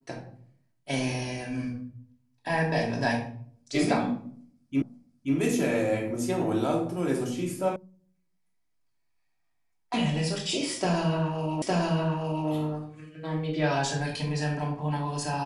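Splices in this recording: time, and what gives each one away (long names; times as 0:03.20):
0:04.82: the same again, the last 0.53 s
0:07.76: cut off before it has died away
0:11.62: the same again, the last 0.86 s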